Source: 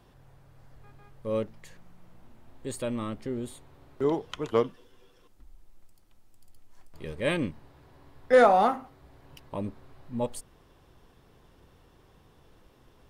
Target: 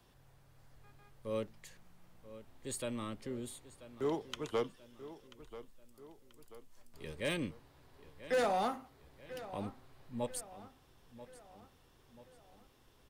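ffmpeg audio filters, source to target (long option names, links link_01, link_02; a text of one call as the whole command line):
ffmpeg -i in.wav -filter_complex "[0:a]highshelf=frequency=2200:gain=8.5,acrossover=split=350|510|2600[link_01][link_02][link_03][link_04];[link_03]alimiter=limit=-20dB:level=0:latency=1:release=303[link_05];[link_01][link_02][link_05][link_04]amix=inputs=4:normalize=0,volume=18.5dB,asoftclip=hard,volume=-18.5dB,asplit=2[link_06][link_07];[link_07]adelay=986,lowpass=frequency=4900:poles=1,volume=-15dB,asplit=2[link_08][link_09];[link_09]adelay=986,lowpass=frequency=4900:poles=1,volume=0.49,asplit=2[link_10][link_11];[link_11]adelay=986,lowpass=frequency=4900:poles=1,volume=0.49,asplit=2[link_12][link_13];[link_13]adelay=986,lowpass=frequency=4900:poles=1,volume=0.49,asplit=2[link_14][link_15];[link_15]adelay=986,lowpass=frequency=4900:poles=1,volume=0.49[link_16];[link_06][link_08][link_10][link_12][link_14][link_16]amix=inputs=6:normalize=0,volume=-8.5dB" out.wav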